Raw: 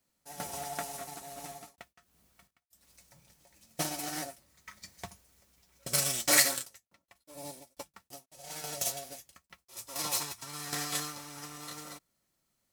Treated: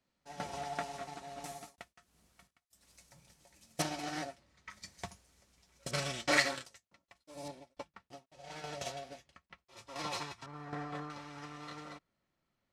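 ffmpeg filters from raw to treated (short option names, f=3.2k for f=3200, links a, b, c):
-af "asetnsamples=n=441:p=0,asendcmd='1.44 lowpass f 10000;3.82 lowpass f 4200;4.7 lowpass f 8300;5.91 lowpass f 3400;6.65 lowpass f 6300;7.48 lowpass f 3200;10.46 lowpass f 1200;11.1 lowpass f 3000',lowpass=4.2k"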